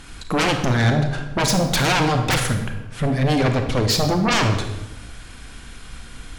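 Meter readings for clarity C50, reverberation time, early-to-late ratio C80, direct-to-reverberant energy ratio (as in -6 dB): 6.5 dB, 1.0 s, 9.0 dB, 5.5 dB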